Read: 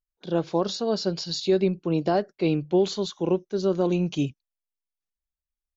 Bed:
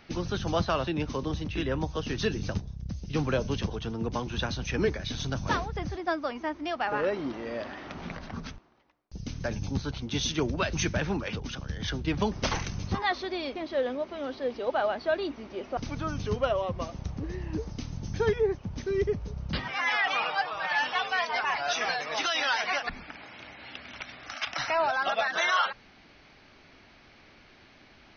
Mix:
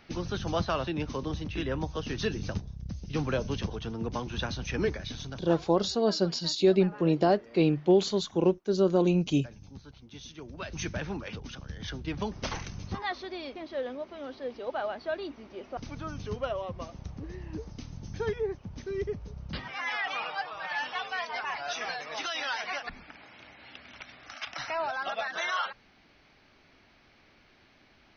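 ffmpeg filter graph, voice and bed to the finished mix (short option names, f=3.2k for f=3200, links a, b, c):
-filter_complex "[0:a]adelay=5150,volume=-0.5dB[a];[1:a]volume=9dB,afade=t=out:st=4.94:d=0.59:silence=0.188365,afade=t=in:st=10.45:d=0.43:silence=0.281838[b];[a][b]amix=inputs=2:normalize=0"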